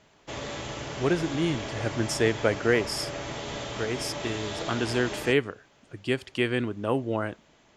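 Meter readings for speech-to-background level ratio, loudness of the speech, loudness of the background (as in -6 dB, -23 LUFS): 7.0 dB, -28.5 LUFS, -35.5 LUFS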